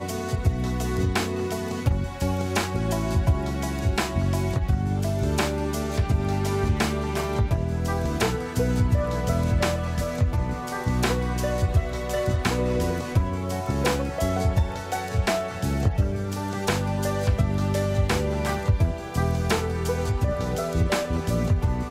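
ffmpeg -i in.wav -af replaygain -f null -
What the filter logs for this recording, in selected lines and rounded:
track_gain = +8.4 dB
track_peak = 0.232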